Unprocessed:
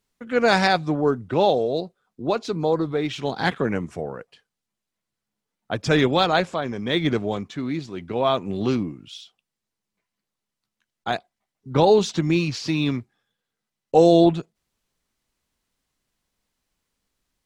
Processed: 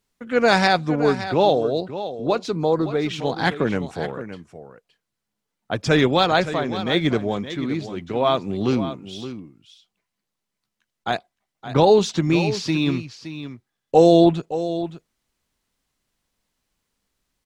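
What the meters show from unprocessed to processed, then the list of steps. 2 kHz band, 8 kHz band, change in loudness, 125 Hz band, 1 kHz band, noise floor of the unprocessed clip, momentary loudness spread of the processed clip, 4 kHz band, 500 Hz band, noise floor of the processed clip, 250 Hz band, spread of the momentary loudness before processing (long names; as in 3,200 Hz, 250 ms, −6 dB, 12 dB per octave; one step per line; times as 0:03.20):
+2.0 dB, +1.5 dB, +1.5 dB, +1.5 dB, +2.0 dB, −85 dBFS, 18 LU, +2.0 dB, +2.0 dB, −82 dBFS, +2.0 dB, 15 LU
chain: single-tap delay 568 ms −12 dB
level +1.5 dB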